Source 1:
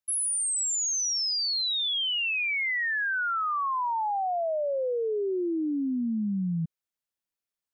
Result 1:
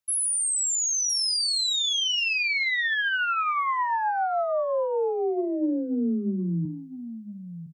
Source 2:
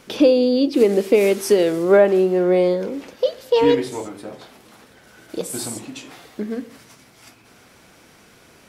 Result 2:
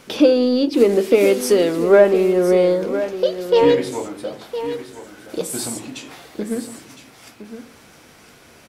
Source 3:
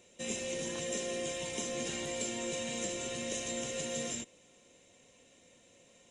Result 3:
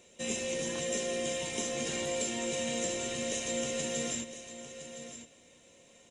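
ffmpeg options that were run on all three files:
ffmpeg -i in.wav -filter_complex "[0:a]bandreject=frequency=53.82:width_type=h:width=4,bandreject=frequency=107.64:width_type=h:width=4,bandreject=frequency=161.46:width_type=h:width=4,bandreject=frequency=215.28:width_type=h:width=4,bandreject=frequency=269.1:width_type=h:width=4,bandreject=frequency=322.92:width_type=h:width=4,bandreject=frequency=376.74:width_type=h:width=4,asplit=2[link_01][link_02];[link_02]asoftclip=type=tanh:threshold=-21.5dB,volume=-10dB[link_03];[link_01][link_03]amix=inputs=2:normalize=0,asplit=2[link_04][link_05];[link_05]adelay=13,volume=-13dB[link_06];[link_04][link_06]amix=inputs=2:normalize=0,aecho=1:1:1012:0.266" out.wav

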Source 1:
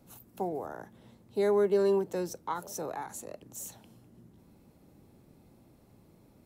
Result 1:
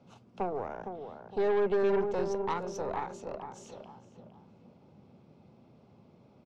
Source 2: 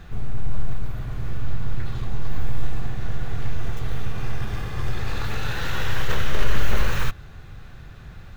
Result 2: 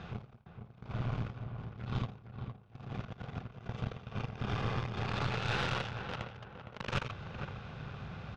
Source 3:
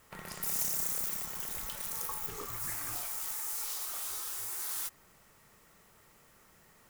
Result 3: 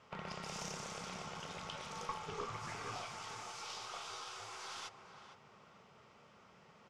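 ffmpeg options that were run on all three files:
ffmpeg -i in.wav -filter_complex "[0:a]asoftclip=type=tanh:threshold=-20.5dB,highpass=120,equalizer=frequency=310:width_type=q:width=4:gain=-8,equalizer=frequency=1800:width_type=q:width=4:gain=-9,equalizer=frequency=4100:width_type=q:width=4:gain=-6,lowpass=frequency=4800:width=0.5412,lowpass=frequency=4800:width=1.3066,asplit=2[link_01][link_02];[link_02]adelay=461,lowpass=frequency=1700:poles=1,volume=-7.5dB,asplit=2[link_03][link_04];[link_04]adelay=461,lowpass=frequency=1700:poles=1,volume=0.38,asplit=2[link_05][link_06];[link_06]adelay=461,lowpass=frequency=1700:poles=1,volume=0.38,asplit=2[link_07][link_08];[link_08]adelay=461,lowpass=frequency=1700:poles=1,volume=0.38[link_09];[link_03][link_05][link_07][link_09]amix=inputs=4:normalize=0[link_10];[link_01][link_10]amix=inputs=2:normalize=0,aeval=exprs='0.1*(cos(1*acos(clip(val(0)/0.1,-1,1)))-cos(1*PI/2))+0.00501*(cos(5*acos(clip(val(0)/0.1,-1,1)))-cos(5*PI/2))+0.0112*(cos(6*acos(clip(val(0)/0.1,-1,1)))-cos(6*PI/2))':channel_layout=same,volume=1dB" out.wav

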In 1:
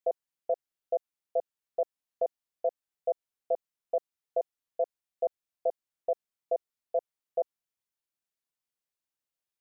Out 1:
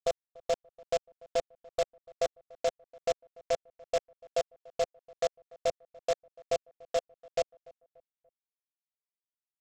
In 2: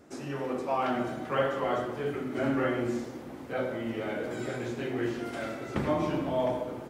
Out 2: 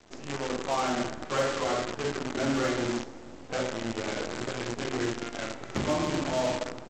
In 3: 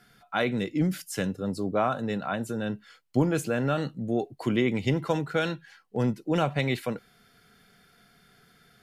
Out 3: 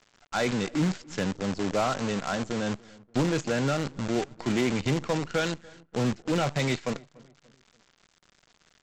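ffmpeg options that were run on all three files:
ffmpeg -i in.wav -filter_complex "[0:a]aresample=16000,acrusher=bits=6:dc=4:mix=0:aa=0.000001,aresample=44100,asoftclip=type=hard:threshold=-19dB,asplit=2[link_01][link_02];[link_02]adelay=290,lowpass=frequency=1400:poles=1,volume=-23dB,asplit=2[link_03][link_04];[link_04]adelay=290,lowpass=frequency=1400:poles=1,volume=0.44,asplit=2[link_05][link_06];[link_06]adelay=290,lowpass=frequency=1400:poles=1,volume=0.44[link_07];[link_01][link_03][link_05][link_07]amix=inputs=4:normalize=0" out.wav

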